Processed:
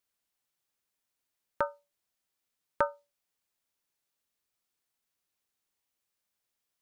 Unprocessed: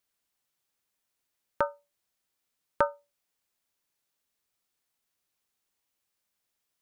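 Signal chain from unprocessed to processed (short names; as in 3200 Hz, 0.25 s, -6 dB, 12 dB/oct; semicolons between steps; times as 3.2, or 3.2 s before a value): dynamic EQ 4300 Hz, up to +6 dB, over -51 dBFS, Q 0.78; gain -3 dB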